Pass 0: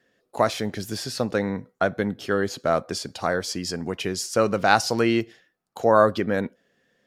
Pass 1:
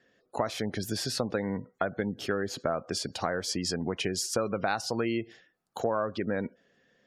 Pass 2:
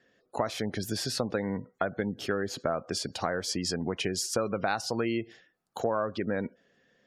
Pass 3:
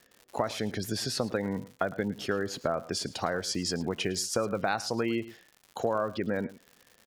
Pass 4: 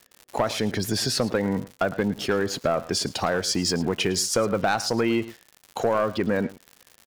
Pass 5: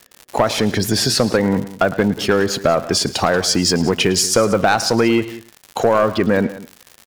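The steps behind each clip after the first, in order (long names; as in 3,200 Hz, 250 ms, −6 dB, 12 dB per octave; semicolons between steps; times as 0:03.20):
gate on every frequency bin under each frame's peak −30 dB strong; downward compressor 6 to 1, threshold −26 dBFS, peak gain reduction 14 dB
no processing that can be heard
single-tap delay 108 ms −18 dB; surface crackle 160 per second −41 dBFS
leveller curve on the samples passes 2
single-tap delay 184 ms −17 dB; level +8 dB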